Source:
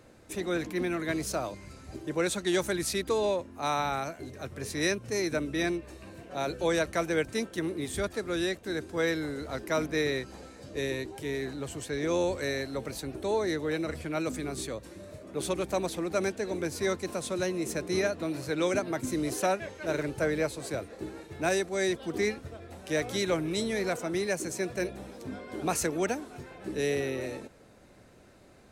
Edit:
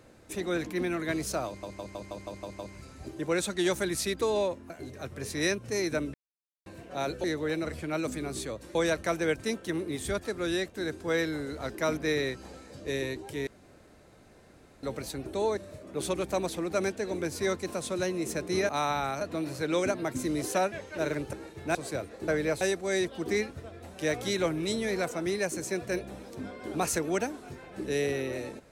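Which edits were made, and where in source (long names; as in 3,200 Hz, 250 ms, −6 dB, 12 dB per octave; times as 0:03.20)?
0:01.47: stutter 0.16 s, 8 plays
0:03.58–0:04.10: move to 0:18.09
0:05.54–0:06.06: silence
0:11.36–0:12.72: fill with room tone
0:13.46–0:14.97: move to 0:06.64
0:20.21–0:20.54: swap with 0:21.07–0:21.49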